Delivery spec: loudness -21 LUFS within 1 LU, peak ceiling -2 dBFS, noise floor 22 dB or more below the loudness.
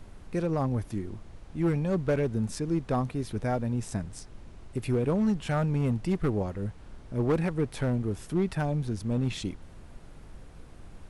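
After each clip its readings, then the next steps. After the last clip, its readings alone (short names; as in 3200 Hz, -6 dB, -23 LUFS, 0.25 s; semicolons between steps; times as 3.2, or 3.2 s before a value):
clipped 1.4%; flat tops at -20.0 dBFS; noise floor -49 dBFS; noise floor target -52 dBFS; loudness -30.0 LUFS; peak -20.0 dBFS; loudness target -21.0 LUFS
-> clip repair -20 dBFS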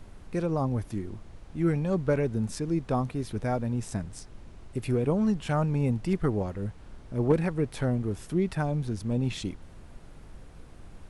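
clipped 0.0%; noise floor -49 dBFS; noise floor target -52 dBFS
-> noise print and reduce 6 dB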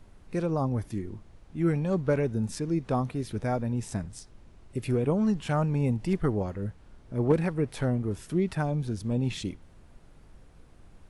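noise floor -54 dBFS; loudness -29.5 LUFS; peak -11.0 dBFS; loudness target -21.0 LUFS
-> gain +8.5 dB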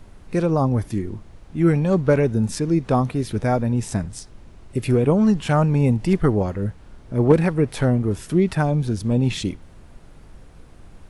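loudness -21.0 LUFS; peak -2.5 dBFS; noise floor -46 dBFS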